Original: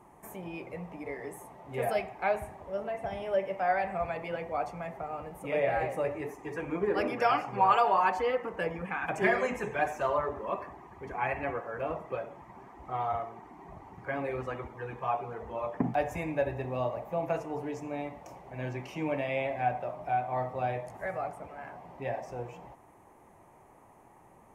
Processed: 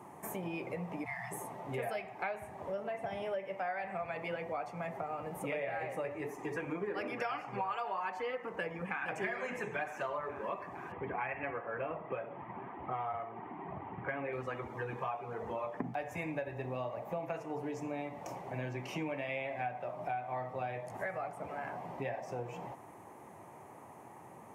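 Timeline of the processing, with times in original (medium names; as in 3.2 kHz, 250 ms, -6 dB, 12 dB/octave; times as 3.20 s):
1.05–1.32 s: spectral selection erased 210–640 Hz
8.59–9.06 s: echo throw 460 ms, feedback 60%, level -8 dB
10.92–14.33 s: steep low-pass 3.2 kHz 48 dB/octave
whole clip: high-pass 93 Hz 24 dB/octave; dynamic bell 2.1 kHz, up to +5 dB, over -43 dBFS, Q 0.86; compression 6:1, threshold -41 dBFS; trim +5 dB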